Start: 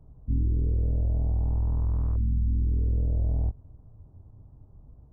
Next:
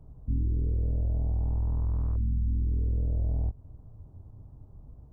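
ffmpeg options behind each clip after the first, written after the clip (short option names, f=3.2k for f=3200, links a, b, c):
-af "acompressor=threshold=-34dB:ratio=1.5,volume=2dB"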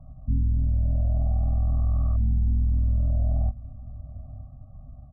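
-af "lowpass=f=1k:t=q:w=4.7,aecho=1:1:944:0.119,afftfilt=real='re*eq(mod(floor(b*sr/1024/270),2),0)':imag='im*eq(mod(floor(b*sr/1024/270),2),0)':win_size=1024:overlap=0.75,volume=4.5dB"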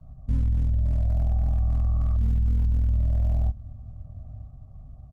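-filter_complex "[0:a]acrossover=split=120|290|460[a][b][c][d];[a]aecho=1:1:855:0.106[e];[c]acrusher=bits=5:dc=4:mix=0:aa=0.000001[f];[e][b][f][d]amix=inputs=4:normalize=0" -ar 48000 -c:a libopus -b:a 24k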